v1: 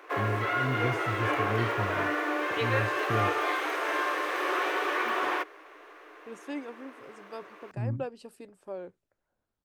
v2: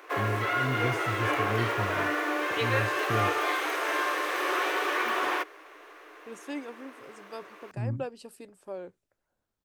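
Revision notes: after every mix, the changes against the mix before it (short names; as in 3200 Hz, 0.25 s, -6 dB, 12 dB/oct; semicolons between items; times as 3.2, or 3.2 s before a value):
master: add high shelf 4000 Hz +7 dB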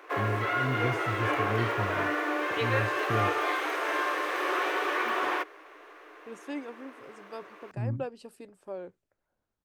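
master: add high shelf 4000 Hz -7 dB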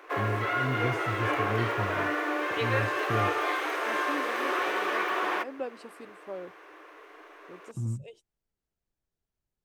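second voice: entry -2.40 s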